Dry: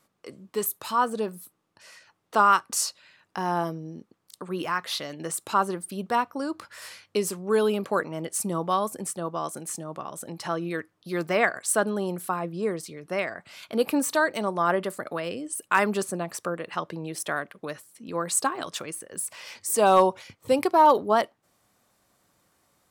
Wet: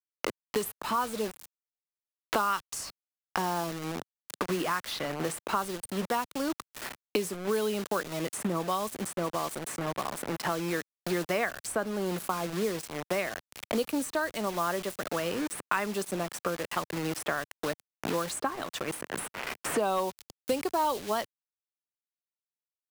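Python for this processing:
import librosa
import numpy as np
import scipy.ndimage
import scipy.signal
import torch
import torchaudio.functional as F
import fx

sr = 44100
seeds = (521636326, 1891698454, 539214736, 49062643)

y = fx.quant_dither(x, sr, seeds[0], bits=6, dither='none')
y = fx.band_squash(y, sr, depth_pct=100)
y = F.gain(torch.from_numpy(y), -5.0).numpy()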